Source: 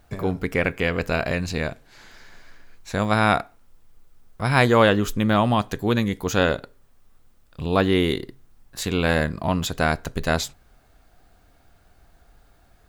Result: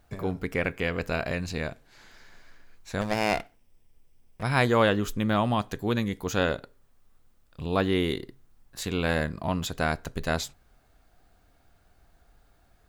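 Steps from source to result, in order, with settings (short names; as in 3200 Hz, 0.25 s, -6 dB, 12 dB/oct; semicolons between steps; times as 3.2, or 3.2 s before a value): 3.01–4.43 minimum comb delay 0.36 ms; gain -5.5 dB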